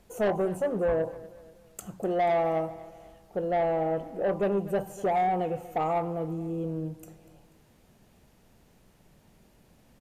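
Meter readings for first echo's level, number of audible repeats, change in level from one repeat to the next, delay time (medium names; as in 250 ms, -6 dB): -18.0 dB, 3, -7.5 dB, 243 ms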